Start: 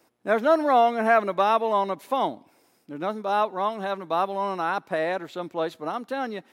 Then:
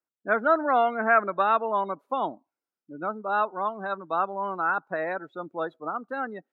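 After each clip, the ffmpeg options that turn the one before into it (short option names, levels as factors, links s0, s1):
-af "afftdn=nr=29:nf=-34,equalizer=f=1400:t=o:w=0.51:g=10,volume=0.596"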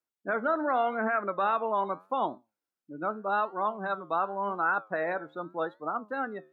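-af "alimiter=limit=0.141:level=0:latency=1:release=71,flanger=delay=7.7:depth=5.7:regen=80:speed=0.85:shape=triangular,volume=1.5"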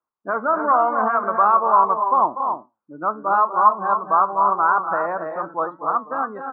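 -filter_complex "[0:a]lowpass=f=1100:t=q:w=4.9,asplit=2[s0][s1];[s1]aecho=0:1:242|279.9:0.282|0.447[s2];[s0][s2]amix=inputs=2:normalize=0,volume=1.33"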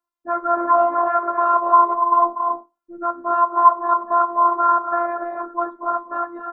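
-af "afftfilt=real='hypot(re,im)*cos(PI*b)':imag='0':win_size=512:overlap=0.75,volume=1.5"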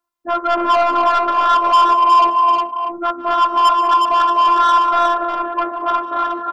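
-af "asoftclip=type=tanh:threshold=0.158,aecho=1:1:149|186|362:0.112|0.133|0.596,volume=2"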